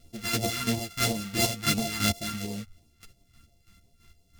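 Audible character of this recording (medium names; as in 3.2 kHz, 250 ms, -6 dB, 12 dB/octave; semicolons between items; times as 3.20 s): a buzz of ramps at a fixed pitch in blocks of 64 samples; phasing stages 2, 2.9 Hz, lowest notch 570–1400 Hz; chopped level 3 Hz, depth 60%, duty 35%; a shimmering, thickened sound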